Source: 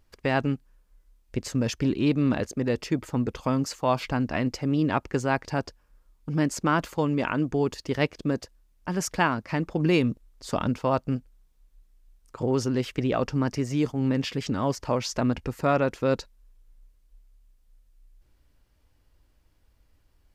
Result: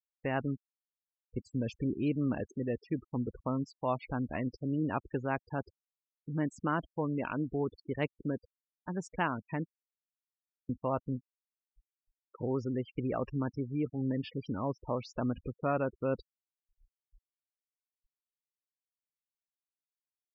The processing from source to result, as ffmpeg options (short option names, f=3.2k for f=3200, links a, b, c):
-filter_complex "[0:a]asplit=3[a][b][c];[a]atrim=end=9.69,asetpts=PTS-STARTPTS,afade=t=out:st=9.686:d=0.004:c=hsin[d];[b]atrim=start=9.69:end=10.69,asetpts=PTS-STARTPTS,volume=0[e];[c]atrim=start=10.69,asetpts=PTS-STARTPTS,afade=t=in:d=0.004:c=hsin[f];[d][e][f]concat=n=3:v=0:a=1,afftfilt=real='re*gte(hypot(re,im),0.0398)':imag='im*gte(hypot(re,im),0.0398)':win_size=1024:overlap=0.75,equalizer=f=5.9k:w=1.3:g=-12,volume=-8dB"